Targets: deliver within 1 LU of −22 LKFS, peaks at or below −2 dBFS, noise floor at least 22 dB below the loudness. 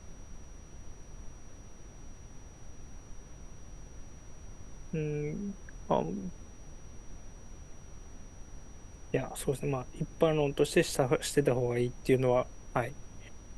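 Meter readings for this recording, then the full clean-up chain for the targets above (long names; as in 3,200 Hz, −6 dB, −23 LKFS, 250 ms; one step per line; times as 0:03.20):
interfering tone 5,800 Hz; level of the tone −60 dBFS; background noise floor −51 dBFS; target noise floor −54 dBFS; integrated loudness −31.5 LKFS; sample peak −13.0 dBFS; target loudness −22.0 LKFS
→ notch filter 5,800 Hz, Q 30
noise reduction from a noise print 6 dB
level +9.5 dB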